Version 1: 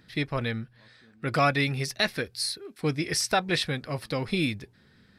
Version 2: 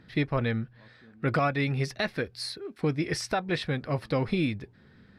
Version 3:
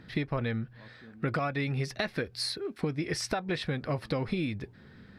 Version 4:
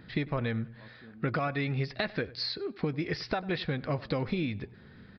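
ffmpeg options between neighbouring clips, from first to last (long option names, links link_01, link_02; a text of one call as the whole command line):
ffmpeg -i in.wav -af "lowpass=frequency=1700:poles=1,alimiter=limit=-20.5dB:level=0:latency=1:release=431,volume=4dB" out.wav
ffmpeg -i in.wav -af "acompressor=threshold=-31dB:ratio=6,volume=3.5dB" out.wav
ffmpeg -i in.wav -filter_complex "[0:a]asplit=2[link_01][link_02];[link_02]adelay=98,lowpass=frequency=2700:poles=1,volume=-19dB,asplit=2[link_03][link_04];[link_04]adelay=98,lowpass=frequency=2700:poles=1,volume=0.34,asplit=2[link_05][link_06];[link_06]adelay=98,lowpass=frequency=2700:poles=1,volume=0.34[link_07];[link_01][link_03][link_05][link_07]amix=inputs=4:normalize=0,aresample=11025,aresample=44100" out.wav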